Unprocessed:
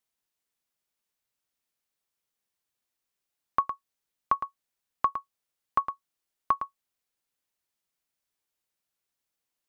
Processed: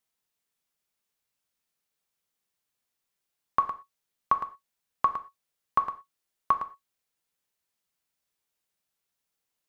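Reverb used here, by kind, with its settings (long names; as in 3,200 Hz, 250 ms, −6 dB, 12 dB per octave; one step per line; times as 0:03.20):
reverb whose tail is shaped and stops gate 140 ms falling, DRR 8.5 dB
level +1 dB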